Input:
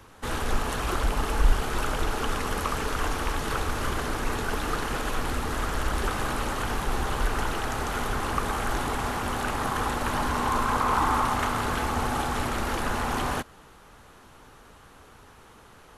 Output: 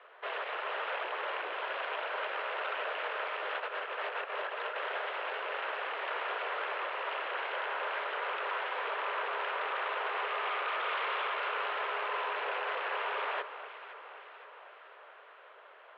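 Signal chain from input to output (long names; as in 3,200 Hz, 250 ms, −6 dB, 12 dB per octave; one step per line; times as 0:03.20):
loose part that buzzes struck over −30 dBFS, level −25 dBFS
in parallel at −2 dB: brickwall limiter −19 dBFS, peak gain reduction 10 dB
0:03.56–0:04.77: on the sum: compressor whose output falls as the input rises −25 dBFS, ratio −0.5
wave folding −20.5 dBFS
on a send: delay that swaps between a low-pass and a high-pass 257 ms, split 1,200 Hz, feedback 75%, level −10.5 dB
on the sum: single-sideband voice off tune +170 Hz 270–3,000 Hz
level −7.5 dB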